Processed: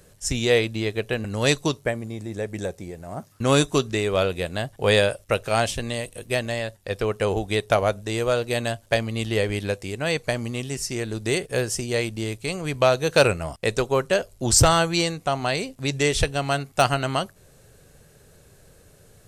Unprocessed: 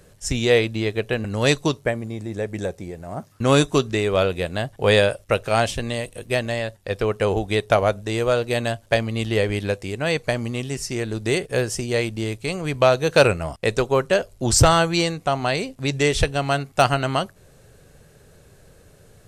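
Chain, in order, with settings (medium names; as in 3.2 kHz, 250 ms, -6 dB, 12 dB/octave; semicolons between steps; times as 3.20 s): treble shelf 5.1 kHz +5.5 dB; trim -2.5 dB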